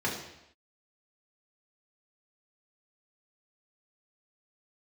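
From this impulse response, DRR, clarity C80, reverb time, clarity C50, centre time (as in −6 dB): −5.0 dB, 8.0 dB, non-exponential decay, 5.0 dB, 39 ms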